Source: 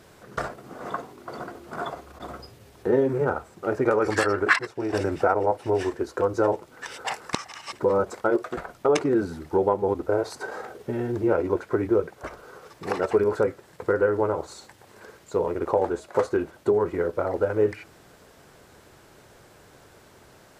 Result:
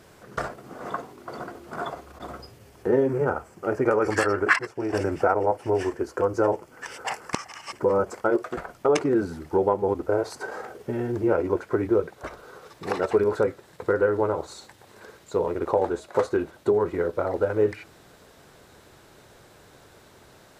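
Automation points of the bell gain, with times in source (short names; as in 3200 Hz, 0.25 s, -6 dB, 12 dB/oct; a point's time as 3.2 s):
bell 3800 Hz 0.21 oct
2.35 s -2 dB
3.24 s -13.5 dB
7.94 s -13.5 dB
8.5 s -4 dB
11.54 s -4 dB
12.15 s +4.5 dB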